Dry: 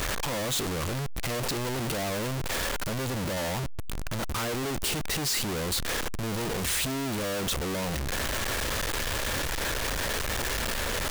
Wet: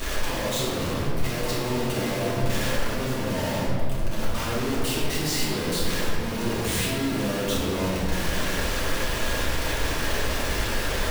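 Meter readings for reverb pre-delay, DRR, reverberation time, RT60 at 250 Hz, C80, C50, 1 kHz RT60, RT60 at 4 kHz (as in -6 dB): 3 ms, -9.5 dB, 2.2 s, 3.5 s, 0.5 dB, -2.0 dB, 2.0 s, 1.3 s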